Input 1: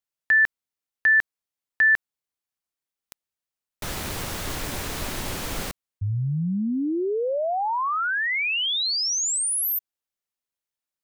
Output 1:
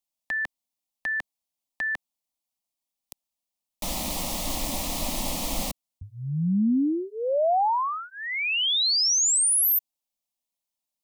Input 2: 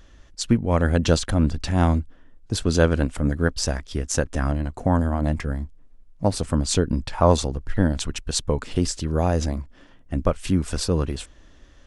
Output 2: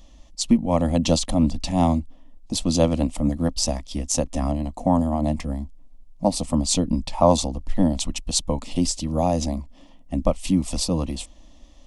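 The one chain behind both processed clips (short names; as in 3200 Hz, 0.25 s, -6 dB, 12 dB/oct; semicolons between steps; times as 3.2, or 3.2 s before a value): fixed phaser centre 410 Hz, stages 6; gain +3.5 dB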